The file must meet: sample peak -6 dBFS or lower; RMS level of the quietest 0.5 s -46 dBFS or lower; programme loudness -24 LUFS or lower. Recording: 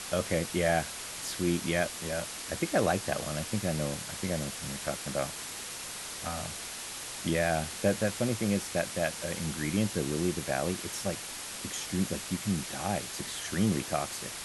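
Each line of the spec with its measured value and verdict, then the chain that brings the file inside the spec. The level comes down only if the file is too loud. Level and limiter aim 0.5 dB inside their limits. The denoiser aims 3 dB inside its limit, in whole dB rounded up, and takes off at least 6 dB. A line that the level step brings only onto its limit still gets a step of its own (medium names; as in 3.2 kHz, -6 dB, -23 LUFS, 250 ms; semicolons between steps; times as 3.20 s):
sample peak -13.5 dBFS: pass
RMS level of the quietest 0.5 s -40 dBFS: fail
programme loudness -32.0 LUFS: pass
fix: noise reduction 9 dB, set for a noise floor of -40 dBFS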